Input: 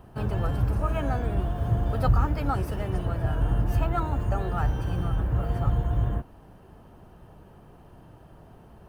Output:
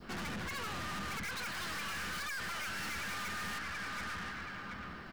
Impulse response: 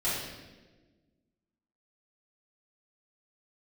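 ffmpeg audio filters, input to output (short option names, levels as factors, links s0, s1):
-filter_complex "[0:a]acrossover=split=410|530[s0][s1][s2];[s2]dynaudnorm=f=200:g=21:m=4.73[s3];[s0][s1][s3]amix=inputs=3:normalize=0,asetrate=76440,aresample=44100,equalizer=f=100:t=o:w=0.67:g=-12,equalizer=f=630:t=o:w=0.67:g=-3,equalizer=f=1600:t=o:w=0.67:g=6,equalizer=f=4000:t=o:w=0.67:g=12,asplit=2[s4][s5];[s5]adelay=728,lowpass=f=2000:p=1,volume=0.188,asplit=2[s6][s7];[s7]adelay=728,lowpass=f=2000:p=1,volume=0.43,asplit=2[s8][s9];[s9]adelay=728,lowpass=f=2000:p=1,volume=0.43,asplit=2[s10][s11];[s11]adelay=728,lowpass=f=2000:p=1,volume=0.43[s12];[s4][s6][s8][s10][s12]amix=inputs=5:normalize=0,alimiter=limit=0.106:level=0:latency=1:release=475,adynamicequalizer=threshold=0.00501:dfrequency=1800:dqfactor=0.96:tfrequency=1800:tqfactor=0.96:attack=5:release=100:ratio=0.375:range=3.5:mode=boostabove:tftype=bell,aeval=exprs='(tanh(100*val(0)+0.35)-tanh(0.35))/100':c=same,volume=1.12"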